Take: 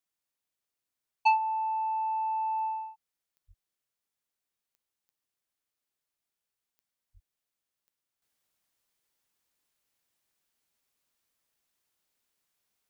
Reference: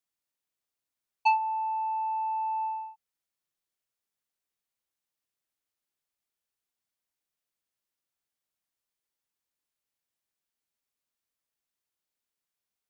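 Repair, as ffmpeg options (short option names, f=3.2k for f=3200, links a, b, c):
-filter_complex "[0:a]adeclick=t=4,asplit=3[a][b][c];[a]afade=t=out:st=3.47:d=0.02[d];[b]highpass=f=140:w=0.5412,highpass=f=140:w=1.3066,afade=t=in:st=3.47:d=0.02,afade=t=out:st=3.59:d=0.02[e];[c]afade=t=in:st=3.59:d=0.02[f];[d][e][f]amix=inputs=3:normalize=0,asplit=3[g][h][i];[g]afade=t=out:st=7.13:d=0.02[j];[h]highpass=f=140:w=0.5412,highpass=f=140:w=1.3066,afade=t=in:st=7.13:d=0.02,afade=t=out:st=7.25:d=0.02[k];[i]afade=t=in:st=7.25:d=0.02[l];[j][k][l]amix=inputs=3:normalize=0,asetnsamples=n=441:p=0,asendcmd='8.22 volume volume -8dB',volume=0dB"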